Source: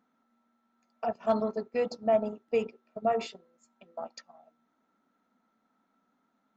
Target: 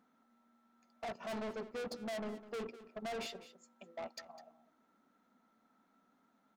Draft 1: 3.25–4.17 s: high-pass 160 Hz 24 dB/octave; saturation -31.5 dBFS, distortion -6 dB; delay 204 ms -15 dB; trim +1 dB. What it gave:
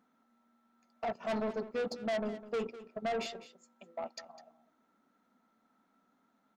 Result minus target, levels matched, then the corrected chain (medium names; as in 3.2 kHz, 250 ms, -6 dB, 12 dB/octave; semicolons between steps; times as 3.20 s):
saturation: distortion -4 dB
3.25–4.17 s: high-pass 160 Hz 24 dB/octave; saturation -40 dBFS, distortion -2 dB; delay 204 ms -15 dB; trim +1 dB